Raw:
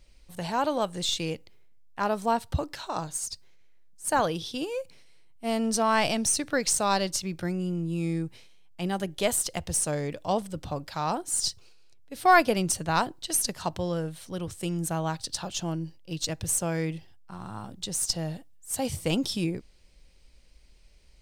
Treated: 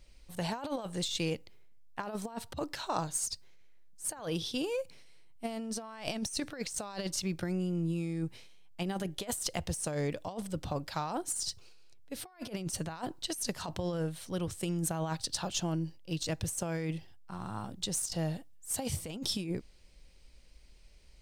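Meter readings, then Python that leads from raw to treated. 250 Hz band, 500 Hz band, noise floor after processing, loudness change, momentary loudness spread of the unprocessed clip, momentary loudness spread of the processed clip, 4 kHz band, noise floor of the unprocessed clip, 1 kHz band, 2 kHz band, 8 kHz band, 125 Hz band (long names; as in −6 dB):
−5.0 dB, −8.0 dB, −57 dBFS, −7.5 dB, 12 LU, 8 LU, −5.5 dB, −56 dBFS, −13.0 dB, −12.0 dB, −7.5 dB, −3.5 dB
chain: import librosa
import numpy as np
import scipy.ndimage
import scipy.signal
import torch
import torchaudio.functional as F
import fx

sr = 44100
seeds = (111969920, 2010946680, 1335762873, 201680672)

y = fx.over_compress(x, sr, threshold_db=-30.0, ratio=-0.5)
y = y * librosa.db_to_amplitude(-4.0)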